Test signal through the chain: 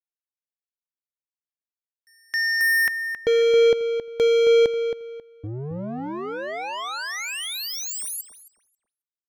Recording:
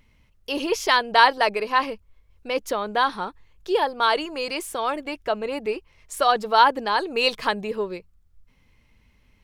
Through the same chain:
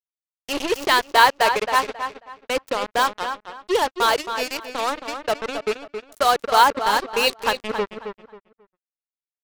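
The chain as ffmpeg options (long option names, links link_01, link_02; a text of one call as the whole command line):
ffmpeg -i in.wav -filter_complex "[0:a]anlmdn=1.58,acrusher=bits=3:mix=0:aa=0.5,asplit=2[link_01][link_02];[link_02]adelay=270,lowpass=frequency=3400:poles=1,volume=-8dB,asplit=2[link_03][link_04];[link_04]adelay=270,lowpass=frequency=3400:poles=1,volume=0.26,asplit=2[link_05][link_06];[link_06]adelay=270,lowpass=frequency=3400:poles=1,volume=0.26[link_07];[link_01][link_03][link_05][link_07]amix=inputs=4:normalize=0,volume=1dB" out.wav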